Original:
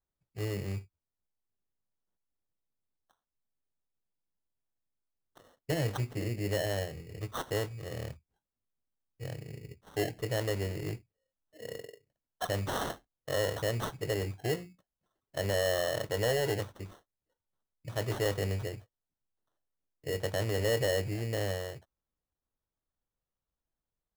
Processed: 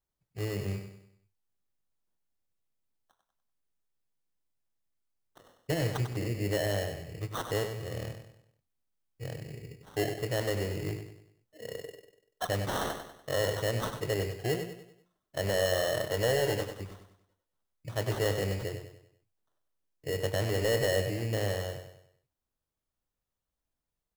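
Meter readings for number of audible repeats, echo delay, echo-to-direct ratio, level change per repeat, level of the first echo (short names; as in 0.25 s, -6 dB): 4, 97 ms, -7.0 dB, -7.5 dB, -8.0 dB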